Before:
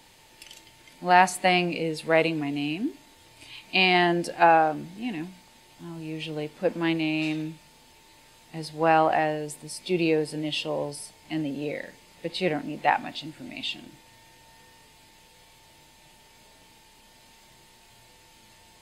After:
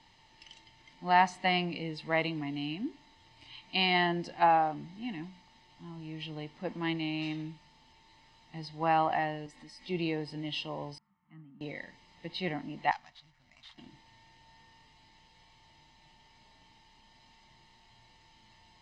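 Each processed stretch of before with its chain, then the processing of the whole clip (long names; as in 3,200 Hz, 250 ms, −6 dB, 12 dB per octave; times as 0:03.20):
0:09.46–0:09.88: parametric band 1,900 Hz +8 dB 0.4 octaves + downward compressor 2 to 1, threshold −41 dBFS + comb filter 3.7 ms, depth 69%
0:10.98–0:11.61: pair of resonant band-passes 490 Hz, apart 2.7 octaves + high-frequency loss of the air 350 metres
0:12.91–0:13.78: running median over 15 samples + guitar amp tone stack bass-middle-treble 10-0-10
whole clip: low-pass filter 5,700 Hz 24 dB per octave; comb filter 1 ms, depth 52%; level −7.5 dB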